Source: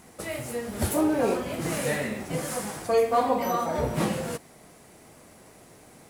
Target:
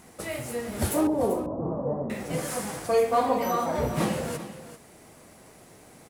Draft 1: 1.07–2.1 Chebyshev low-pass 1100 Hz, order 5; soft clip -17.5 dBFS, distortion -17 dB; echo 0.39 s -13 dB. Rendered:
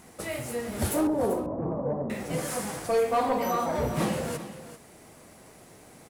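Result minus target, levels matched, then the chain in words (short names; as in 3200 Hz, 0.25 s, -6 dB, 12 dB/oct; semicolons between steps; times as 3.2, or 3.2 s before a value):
soft clip: distortion +17 dB
1.07–2.1 Chebyshev low-pass 1100 Hz, order 5; soft clip -7 dBFS, distortion -34 dB; echo 0.39 s -13 dB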